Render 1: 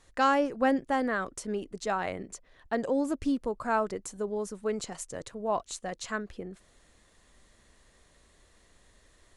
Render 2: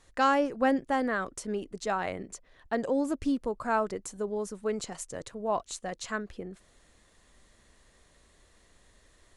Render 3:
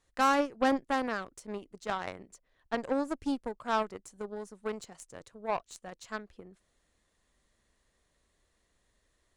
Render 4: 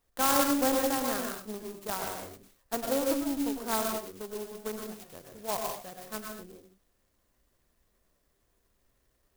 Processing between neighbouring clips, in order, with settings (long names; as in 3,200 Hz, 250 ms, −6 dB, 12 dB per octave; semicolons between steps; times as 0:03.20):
no processing that can be heard
harmonic generator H 4 −25 dB, 7 −20 dB, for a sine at −13.5 dBFS; level −1.5 dB
flanger 0.64 Hz, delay 4.1 ms, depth 6.4 ms, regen +76%; convolution reverb, pre-delay 96 ms, DRR 1 dB; converter with an unsteady clock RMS 0.11 ms; level +3.5 dB